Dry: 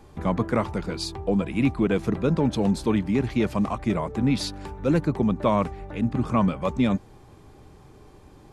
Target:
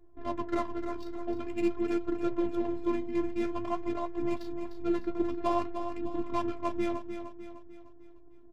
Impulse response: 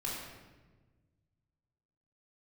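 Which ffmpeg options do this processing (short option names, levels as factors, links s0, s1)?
-filter_complex "[0:a]adynamicsmooth=sensitivity=3:basefreq=520,afftfilt=real='hypot(re,im)*cos(PI*b)':imag='0':win_size=512:overlap=0.75,flanger=delay=6.3:depth=9.6:regen=51:speed=0.49:shape=sinusoidal,asplit=2[s0][s1];[s1]aecho=0:1:302|604|906|1208|1510:0.355|0.163|0.0751|0.0345|0.0159[s2];[s0][s2]amix=inputs=2:normalize=0"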